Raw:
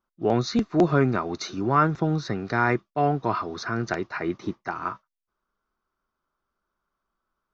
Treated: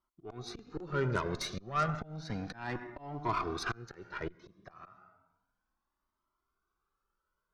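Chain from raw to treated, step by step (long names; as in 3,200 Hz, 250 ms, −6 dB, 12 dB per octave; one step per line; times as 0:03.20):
convolution reverb RT60 0.75 s, pre-delay 73 ms, DRR 14 dB
tape wow and flutter 24 cents
volume swells 525 ms
harmonic generator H 8 −22 dB, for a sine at −13.5 dBFS
flanger whose copies keep moving one way rising 0.32 Hz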